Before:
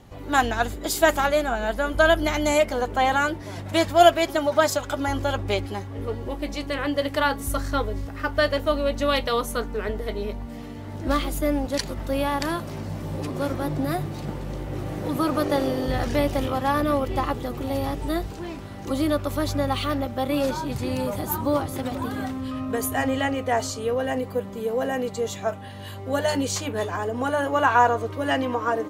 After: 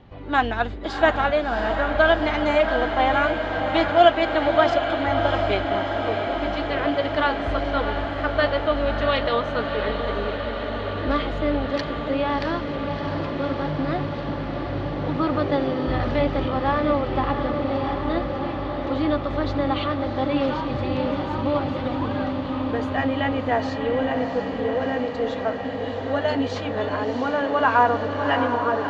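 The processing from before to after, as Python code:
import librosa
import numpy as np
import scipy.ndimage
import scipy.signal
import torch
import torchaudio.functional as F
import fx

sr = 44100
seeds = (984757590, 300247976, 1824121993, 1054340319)

y = scipy.signal.sosfilt(scipy.signal.butter(4, 3800.0, 'lowpass', fs=sr, output='sos'), x)
y = fx.echo_diffused(y, sr, ms=686, feedback_pct=80, wet_db=-7.0)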